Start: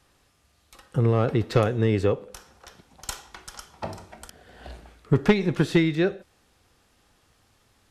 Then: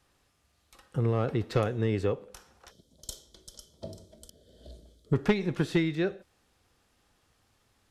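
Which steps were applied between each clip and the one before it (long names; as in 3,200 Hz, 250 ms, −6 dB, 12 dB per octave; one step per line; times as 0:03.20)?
gain on a spectral selection 0:02.71–0:05.13, 680–3,000 Hz −19 dB
level −6 dB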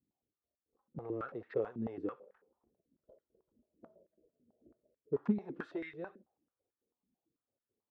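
low-pass that shuts in the quiet parts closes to 340 Hz, open at −23.5 dBFS
flanger 0.32 Hz, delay 0.1 ms, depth 9.1 ms, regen −39%
band-pass on a step sequencer 9.1 Hz 240–1,800 Hz
level +2.5 dB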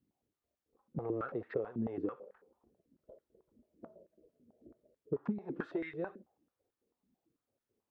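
high-shelf EQ 2,300 Hz −8 dB
downward compressor 8 to 1, threshold −38 dBFS, peak gain reduction 13 dB
level +6.5 dB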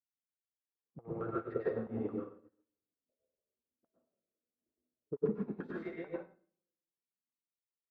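convolution reverb RT60 1.0 s, pre-delay 93 ms, DRR −4.5 dB
expander for the loud parts 2.5 to 1, over −51 dBFS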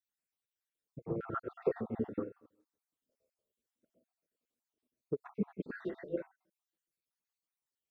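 time-frequency cells dropped at random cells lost 57%
level +4.5 dB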